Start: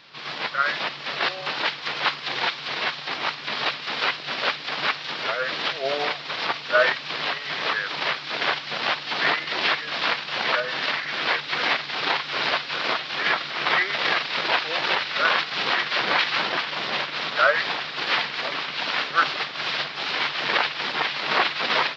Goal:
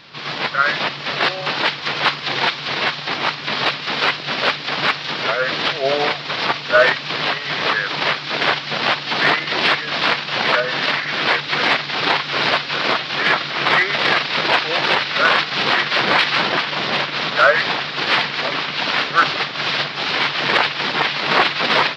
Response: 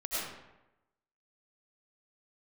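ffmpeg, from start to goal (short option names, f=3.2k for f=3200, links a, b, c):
-filter_complex "[0:a]lowshelf=f=290:g=7.5,asplit=2[a][b];[b]acontrast=66,volume=1dB[c];[a][c]amix=inputs=2:normalize=0,volume=-4.5dB"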